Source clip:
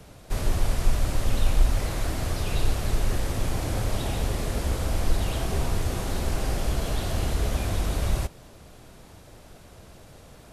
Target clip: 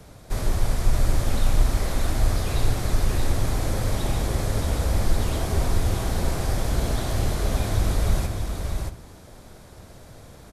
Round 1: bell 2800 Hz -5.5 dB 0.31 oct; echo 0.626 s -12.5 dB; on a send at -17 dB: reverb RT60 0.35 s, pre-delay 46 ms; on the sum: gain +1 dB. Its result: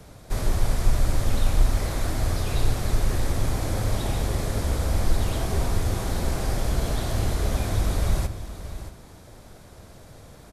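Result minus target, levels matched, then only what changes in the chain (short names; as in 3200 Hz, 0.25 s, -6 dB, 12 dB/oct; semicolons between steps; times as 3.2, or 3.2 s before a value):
echo-to-direct -7 dB
change: echo 0.626 s -4.5 dB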